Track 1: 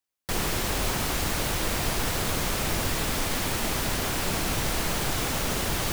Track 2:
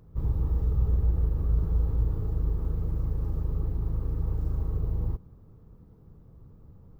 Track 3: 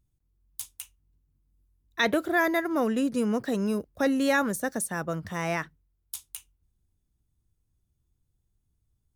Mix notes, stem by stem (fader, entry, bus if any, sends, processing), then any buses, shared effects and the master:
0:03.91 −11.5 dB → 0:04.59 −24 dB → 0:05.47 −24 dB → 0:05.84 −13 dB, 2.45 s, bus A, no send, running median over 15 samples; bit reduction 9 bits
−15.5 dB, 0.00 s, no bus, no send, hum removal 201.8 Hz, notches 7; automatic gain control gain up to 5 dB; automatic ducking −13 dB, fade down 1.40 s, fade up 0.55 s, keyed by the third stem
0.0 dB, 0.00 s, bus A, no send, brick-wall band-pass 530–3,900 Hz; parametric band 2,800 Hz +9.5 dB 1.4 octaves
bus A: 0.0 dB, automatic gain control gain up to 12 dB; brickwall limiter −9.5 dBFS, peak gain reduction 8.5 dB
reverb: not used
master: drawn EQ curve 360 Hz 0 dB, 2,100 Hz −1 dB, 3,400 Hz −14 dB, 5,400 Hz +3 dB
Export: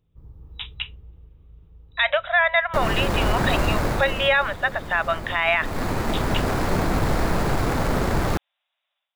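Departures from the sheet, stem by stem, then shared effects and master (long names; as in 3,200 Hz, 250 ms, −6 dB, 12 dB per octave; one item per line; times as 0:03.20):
stem 1 −11.5 dB → −2.5 dB
master: missing drawn EQ curve 360 Hz 0 dB, 2,100 Hz −1 dB, 3,400 Hz −14 dB, 5,400 Hz +3 dB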